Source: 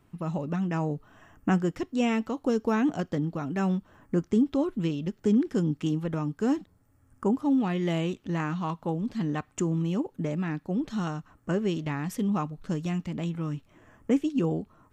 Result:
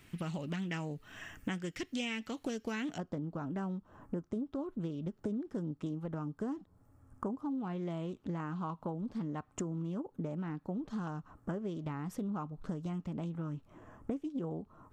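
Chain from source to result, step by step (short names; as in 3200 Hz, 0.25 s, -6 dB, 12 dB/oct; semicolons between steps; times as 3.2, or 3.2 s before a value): resonant high shelf 1500 Hz +9.5 dB, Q 1.5, from 2.98 s -6 dB; compressor 6:1, threshold -37 dBFS, peak gain reduction 17 dB; Doppler distortion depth 0.28 ms; gain +1.5 dB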